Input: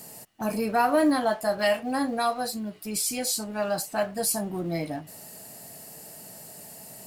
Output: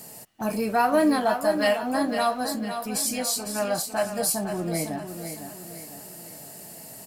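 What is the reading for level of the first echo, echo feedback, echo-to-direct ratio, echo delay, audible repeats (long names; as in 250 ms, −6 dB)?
−8.5 dB, 45%, −7.5 dB, 505 ms, 4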